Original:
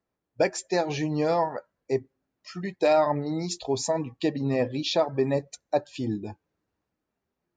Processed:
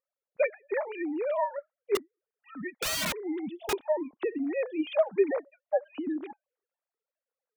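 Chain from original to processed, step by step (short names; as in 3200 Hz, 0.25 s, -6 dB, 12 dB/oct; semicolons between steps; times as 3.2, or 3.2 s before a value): sine-wave speech; 1.95–3.73 wrapped overs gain 22.5 dB; gain -2.5 dB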